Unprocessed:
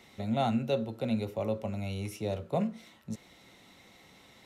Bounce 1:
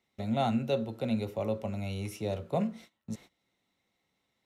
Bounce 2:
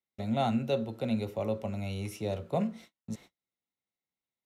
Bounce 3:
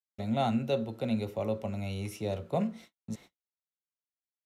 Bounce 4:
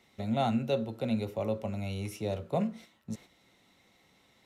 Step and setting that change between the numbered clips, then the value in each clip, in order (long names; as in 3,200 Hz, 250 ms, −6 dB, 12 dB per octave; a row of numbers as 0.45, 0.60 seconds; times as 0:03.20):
noise gate, range: −22, −41, −59, −8 decibels